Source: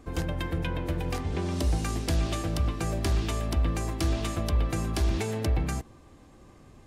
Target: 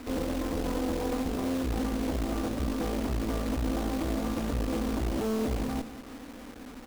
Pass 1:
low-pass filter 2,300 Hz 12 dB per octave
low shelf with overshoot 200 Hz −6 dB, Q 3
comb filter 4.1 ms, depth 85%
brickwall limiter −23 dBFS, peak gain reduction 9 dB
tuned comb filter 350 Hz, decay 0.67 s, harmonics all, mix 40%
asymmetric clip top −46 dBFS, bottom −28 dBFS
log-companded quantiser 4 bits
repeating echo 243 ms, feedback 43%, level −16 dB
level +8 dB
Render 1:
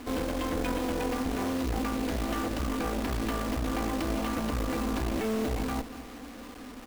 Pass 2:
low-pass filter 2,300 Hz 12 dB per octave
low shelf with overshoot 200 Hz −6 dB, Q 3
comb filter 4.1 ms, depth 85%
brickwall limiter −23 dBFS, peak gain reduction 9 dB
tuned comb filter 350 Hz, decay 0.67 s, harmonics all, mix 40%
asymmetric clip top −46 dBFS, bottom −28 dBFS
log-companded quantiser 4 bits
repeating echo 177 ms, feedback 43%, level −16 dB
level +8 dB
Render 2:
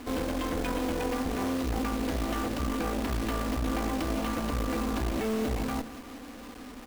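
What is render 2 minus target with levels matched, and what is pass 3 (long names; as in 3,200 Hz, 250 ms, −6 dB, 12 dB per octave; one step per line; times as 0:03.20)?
2,000 Hz band +4.0 dB
low-pass filter 680 Hz 12 dB per octave
low shelf with overshoot 200 Hz −6 dB, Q 3
comb filter 4.1 ms, depth 85%
brickwall limiter −23 dBFS, peak gain reduction 8.5 dB
tuned comb filter 350 Hz, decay 0.67 s, harmonics all, mix 40%
asymmetric clip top −46 dBFS, bottom −28 dBFS
log-companded quantiser 4 bits
repeating echo 177 ms, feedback 43%, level −16 dB
level +8 dB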